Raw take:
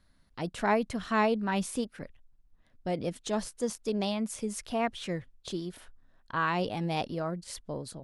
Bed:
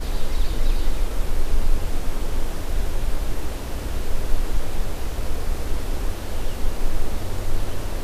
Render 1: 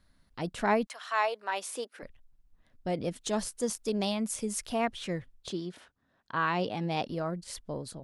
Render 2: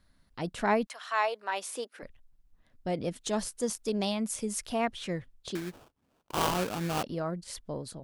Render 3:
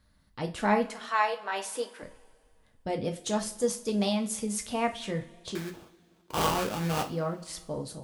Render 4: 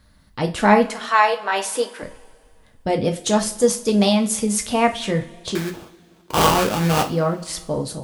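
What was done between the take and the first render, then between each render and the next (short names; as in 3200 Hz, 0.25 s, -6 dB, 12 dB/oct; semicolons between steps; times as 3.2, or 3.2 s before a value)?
0.85–2.02 HPF 810 Hz -> 310 Hz 24 dB/oct; 3.21–4.85 high shelf 5500 Hz +6.5 dB; 5.5–7.08 BPF 120–6900 Hz
5.55–7.03 sample-rate reducer 2000 Hz, jitter 20%
two-slope reverb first 0.29 s, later 2.2 s, from -22 dB, DRR 3.5 dB
gain +11 dB; limiter -2 dBFS, peak gain reduction 1.5 dB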